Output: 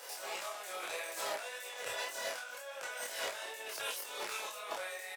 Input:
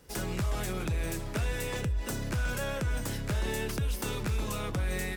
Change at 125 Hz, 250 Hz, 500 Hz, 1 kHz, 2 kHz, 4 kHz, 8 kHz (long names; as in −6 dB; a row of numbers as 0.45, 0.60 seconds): below −40 dB, −25.0 dB, −6.0 dB, −1.5 dB, −3.0 dB, −0.5 dB, −2.5 dB